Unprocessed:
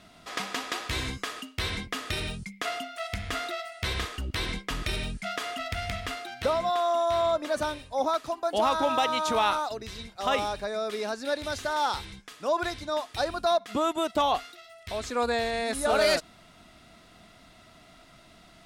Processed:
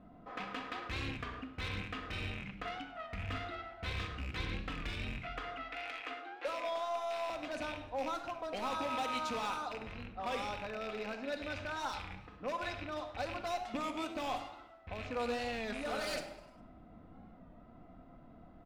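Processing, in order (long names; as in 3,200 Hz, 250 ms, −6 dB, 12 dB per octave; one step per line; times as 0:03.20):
loose part that buzzes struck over −42 dBFS, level −22 dBFS
low-pass that shuts in the quiet parts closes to 710 Hz, open at −21 dBFS
0:05.22–0:07.30: Chebyshev high-pass filter 270 Hz, order 8
downward compressor 1.5 to 1, threshold −53 dBFS, peak gain reduction 12 dB
gain into a clipping stage and back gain 33 dB
echo with shifted repeats 101 ms, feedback 51%, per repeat +100 Hz, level −18.5 dB
rectangular room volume 3,200 cubic metres, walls furnished, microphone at 2 metres
wow of a warped record 33 1/3 rpm, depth 100 cents
level −1 dB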